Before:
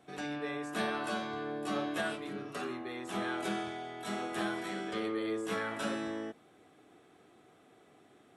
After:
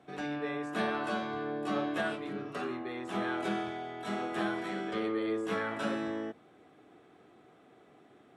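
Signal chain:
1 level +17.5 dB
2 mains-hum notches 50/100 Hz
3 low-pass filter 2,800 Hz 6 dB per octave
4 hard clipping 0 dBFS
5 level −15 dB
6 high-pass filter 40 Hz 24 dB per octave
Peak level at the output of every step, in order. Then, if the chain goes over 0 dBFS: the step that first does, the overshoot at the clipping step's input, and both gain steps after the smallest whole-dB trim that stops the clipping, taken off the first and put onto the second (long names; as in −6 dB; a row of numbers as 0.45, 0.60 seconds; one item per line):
−4.5, −4.5, −5.5, −5.5, −20.5, −20.0 dBFS
no step passes full scale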